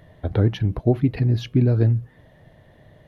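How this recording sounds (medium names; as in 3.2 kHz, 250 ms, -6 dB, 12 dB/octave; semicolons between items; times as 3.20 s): noise floor -53 dBFS; spectral tilt -10.0 dB/octave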